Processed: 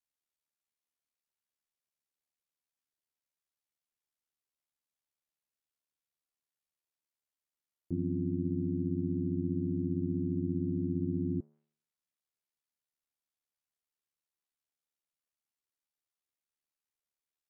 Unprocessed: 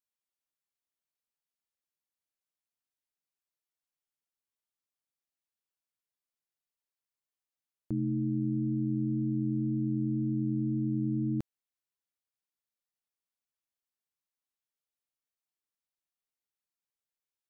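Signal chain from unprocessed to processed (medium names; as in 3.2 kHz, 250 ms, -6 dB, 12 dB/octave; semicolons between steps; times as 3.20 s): de-hum 189.6 Hz, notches 29; ring modulator 37 Hz; low-pass that closes with the level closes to 660 Hz, closed at -34.5 dBFS; trim +1 dB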